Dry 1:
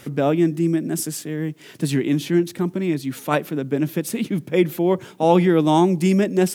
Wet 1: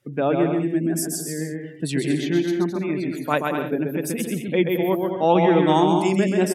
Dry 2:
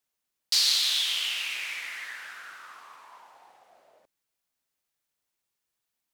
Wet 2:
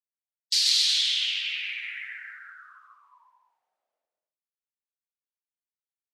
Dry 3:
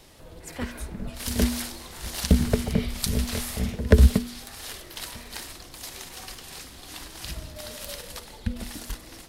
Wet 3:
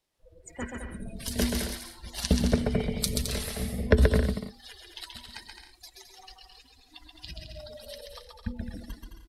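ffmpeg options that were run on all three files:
-filter_complex "[0:a]lowshelf=f=350:g=-6.5,afftdn=nr=27:nf=-37,asplit=2[a][b];[b]aecho=0:1:130|214.5|269.4|305.1|328.3:0.631|0.398|0.251|0.158|0.1[c];[a][c]amix=inputs=2:normalize=0"

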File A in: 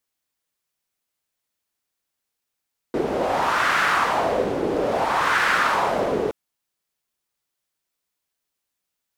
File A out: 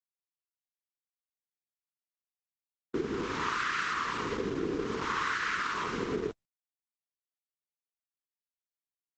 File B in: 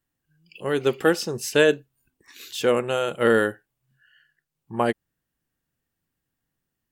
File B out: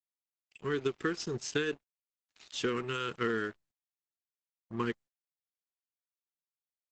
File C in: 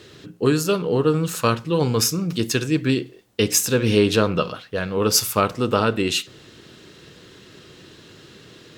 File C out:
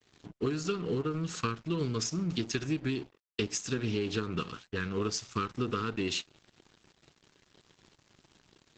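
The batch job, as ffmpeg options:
-af "asuperstop=centerf=680:order=8:qfactor=1.2,acompressor=threshold=-23dB:ratio=16,aresample=16000,aeval=exprs='sgn(val(0))*max(abs(val(0))-0.00708,0)':c=same,aresample=44100,agate=range=-33dB:threshold=-59dB:ratio=3:detection=peak,volume=-3dB" -ar 48000 -c:a libopus -b:a 12k

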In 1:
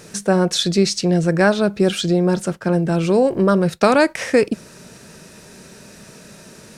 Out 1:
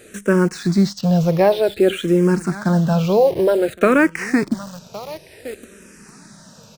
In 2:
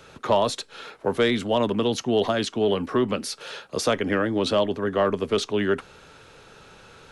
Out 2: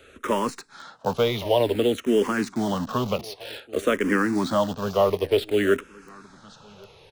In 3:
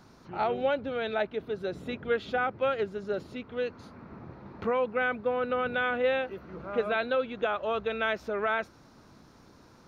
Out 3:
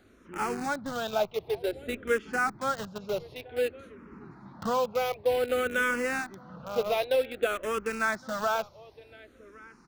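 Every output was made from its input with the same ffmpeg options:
-filter_complex "[0:a]aecho=1:1:1114|2228:0.106|0.0169,acrossover=split=2900[a][b];[b]acompressor=threshold=-37dB:ratio=4:attack=1:release=60[c];[a][c]amix=inputs=2:normalize=0,asplit=2[d][e];[e]acrusher=bits=4:mix=0:aa=0.000001,volume=-6dB[f];[d][f]amix=inputs=2:normalize=0,asplit=2[g][h];[h]afreqshift=-0.54[i];[g][i]amix=inputs=2:normalize=1"

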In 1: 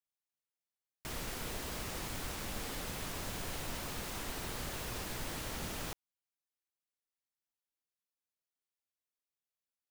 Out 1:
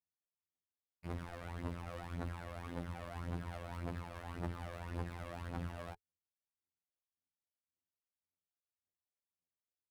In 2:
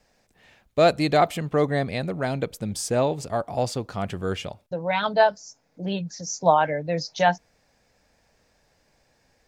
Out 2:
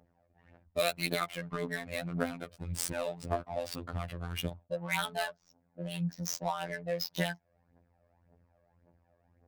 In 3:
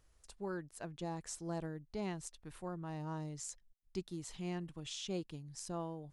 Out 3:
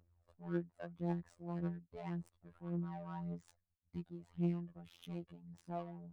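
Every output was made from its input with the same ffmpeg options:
-filter_complex "[0:a]highpass=f=42:w=0.5412,highpass=f=42:w=1.3066,equalizer=f=3.2k:w=0.78:g=-3,bandreject=f=410:w=12,acrossover=split=1700[a][b];[a]acompressor=threshold=-32dB:ratio=10[c];[c][b]amix=inputs=2:normalize=0,aphaser=in_gain=1:out_gain=1:delay=1.9:decay=0.67:speed=1.8:type=triangular,adynamicsmooth=sensitivity=8:basefreq=960,aexciter=amount=2.5:drive=6.3:freq=8.8k,afftfilt=real='hypot(re,im)*cos(PI*b)':imag='0':win_size=2048:overlap=0.75,adynamicequalizer=threshold=0.00251:dfrequency=4700:dqfactor=0.7:tfrequency=4700:tqfactor=0.7:attack=5:release=100:ratio=0.375:range=2.5:mode=cutabove:tftype=highshelf"

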